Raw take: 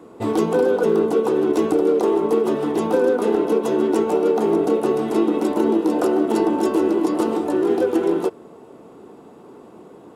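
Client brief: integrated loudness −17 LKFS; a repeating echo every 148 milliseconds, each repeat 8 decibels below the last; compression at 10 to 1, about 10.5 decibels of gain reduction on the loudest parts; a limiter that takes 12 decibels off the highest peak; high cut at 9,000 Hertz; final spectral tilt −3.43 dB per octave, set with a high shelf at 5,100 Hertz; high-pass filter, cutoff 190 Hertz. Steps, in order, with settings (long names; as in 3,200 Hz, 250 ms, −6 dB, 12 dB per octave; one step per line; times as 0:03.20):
high-pass filter 190 Hz
low-pass filter 9,000 Hz
high-shelf EQ 5,100 Hz −4 dB
downward compressor 10 to 1, threshold −25 dBFS
brickwall limiter −27.5 dBFS
repeating echo 148 ms, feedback 40%, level −8 dB
level +18 dB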